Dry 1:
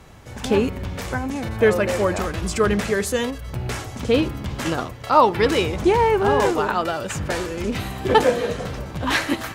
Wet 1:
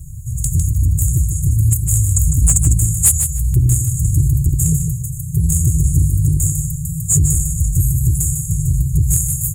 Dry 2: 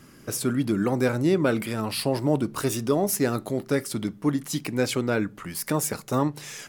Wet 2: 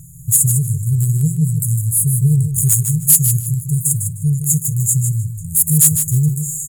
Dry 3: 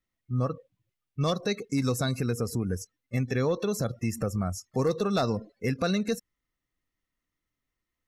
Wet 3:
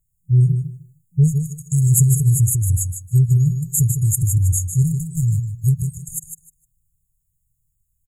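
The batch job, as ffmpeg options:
-filter_complex "[0:a]afftfilt=real='re*(1-between(b*sr/4096,170,6600))':imag='im*(1-between(b*sr/4096,170,6600))':win_size=4096:overlap=0.75,acontrast=21,aeval=exprs='0.316*sin(PI/2*1.78*val(0)/0.316)':c=same,asplit=2[a][b];[b]aecho=0:1:153|306|459:0.422|0.0843|0.0169[c];[a][c]amix=inputs=2:normalize=0,adynamicequalizer=threshold=0.00708:dfrequency=1700:dqfactor=0.7:tfrequency=1700:tqfactor=0.7:attack=5:release=100:ratio=0.375:range=2:mode=boostabove:tftype=highshelf,volume=3dB"

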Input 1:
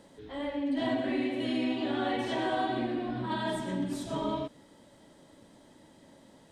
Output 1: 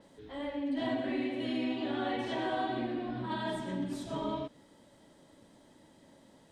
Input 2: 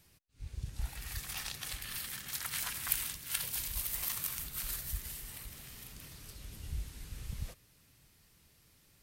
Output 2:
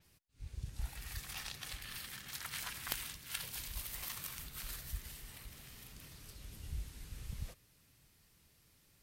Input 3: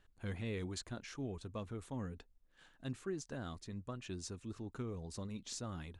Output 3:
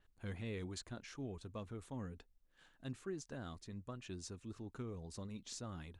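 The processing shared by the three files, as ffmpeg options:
-af "aeval=exprs='(mod(3.55*val(0)+1,2)-1)/3.55':c=same,adynamicequalizer=threshold=0.00178:dfrequency=6500:dqfactor=0.7:tfrequency=6500:tqfactor=0.7:attack=5:release=100:ratio=0.375:range=3:mode=cutabove:tftype=highshelf,volume=-3dB"

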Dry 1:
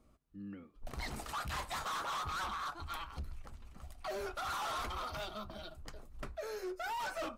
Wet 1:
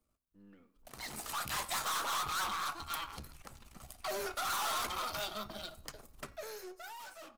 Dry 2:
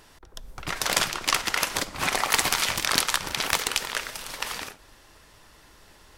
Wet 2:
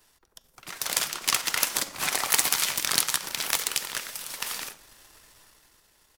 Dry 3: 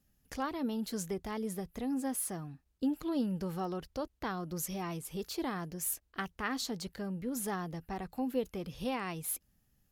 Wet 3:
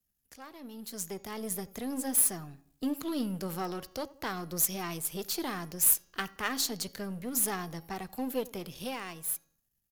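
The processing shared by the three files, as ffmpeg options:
-filter_complex "[0:a]aeval=exprs='if(lt(val(0),0),0.447*val(0),val(0))':c=same,acrossover=split=110[a][b];[a]acompressor=threshold=-58dB:ratio=4[c];[c][b]amix=inputs=2:normalize=0,highshelf=f=2.1k:g=-10,dynaudnorm=f=130:g=17:m=15dB,crystalizer=i=8:c=0,bandreject=f=276.7:t=h:w=4,bandreject=f=553.4:t=h:w=4,bandreject=f=830.1:t=h:w=4,bandreject=f=1.1068k:t=h:w=4,bandreject=f=1.3835k:t=h:w=4,bandreject=f=1.6602k:t=h:w=4,bandreject=f=1.9369k:t=h:w=4,bandreject=f=2.2136k:t=h:w=4,bandreject=f=2.4903k:t=h:w=4,bandreject=f=2.767k:t=h:w=4,bandreject=f=3.0437k:t=h:w=4,bandreject=f=3.3204k:t=h:w=4,bandreject=f=3.5971k:t=h:w=4,bandreject=f=3.8738k:t=h:w=4,bandreject=f=4.1505k:t=h:w=4,bandreject=f=4.4272k:t=h:w=4,bandreject=f=4.7039k:t=h:w=4,bandreject=f=4.9806k:t=h:w=4,bandreject=f=5.2573k:t=h:w=4,bandreject=f=5.534k:t=h:w=4,bandreject=f=5.8107k:t=h:w=4,bandreject=f=6.0874k:t=h:w=4,bandreject=f=6.3641k:t=h:w=4,bandreject=f=6.6408k:t=h:w=4,bandreject=f=6.9175k:t=h:w=4,asplit=2[d][e];[e]adelay=86,lowpass=f=1.2k:p=1,volume=-20dB,asplit=2[f][g];[g]adelay=86,lowpass=f=1.2k:p=1,volume=0.51,asplit=2[h][i];[i]adelay=86,lowpass=f=1.2k:p=1,volume=0.51,asplit=2[j][k];[k]adelay=86,lowpass=f=1.2k:p=1,volume=0.51[l];[f][h][j][l]amix=inputs=4:normalize=0[m];[d][m]amix=inputs=2:normalize=0,volume=-12dB"

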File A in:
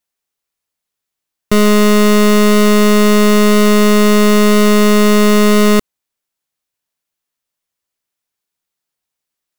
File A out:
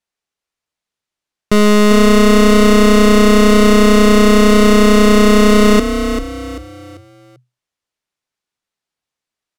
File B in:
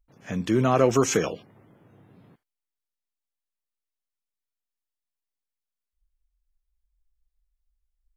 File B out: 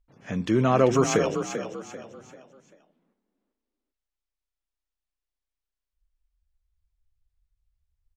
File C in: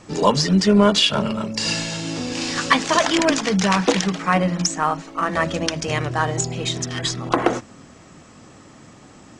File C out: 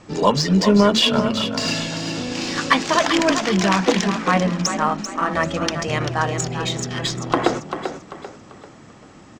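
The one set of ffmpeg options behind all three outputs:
-filter_complex "[0:a]adynamicsmooth=sensitivity=1:basefreq=8k,asplit=5[a][b][c][d][e];[b]adelay=391,afreqshift=31,volume=-8.5dB[f];[c]adelay=782,afreqshift=62,volume=-17.4dB[g];[d]adelay=1173,afreqshift=93,volume=-26.2dB[h];[e]adelay=1564,afreqshift=124,volume=-35.1dB[i];[a][f][g][h][i]amix=inputs=5:normalize=0"

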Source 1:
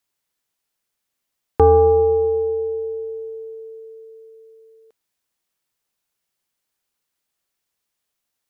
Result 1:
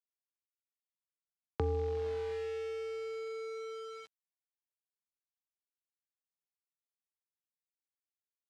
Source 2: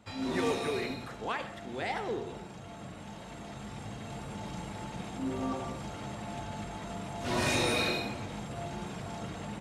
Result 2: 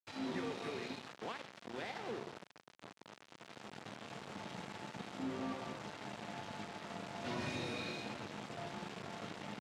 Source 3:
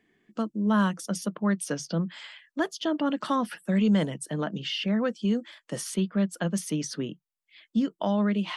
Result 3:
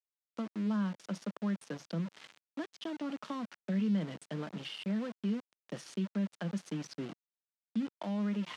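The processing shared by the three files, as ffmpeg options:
-filter_complex "[0:a]acrossover=split=220[a][b];[b]acompressor=threshold=-35dB:ratio=10[c];[a][c]amix=inputs=2:normalize=0,aeval=exprs='val(0)*gte(abs(val(0)),0.0126)':c=same,highpass=150,lowpass=5.1k,volume=-4dB"

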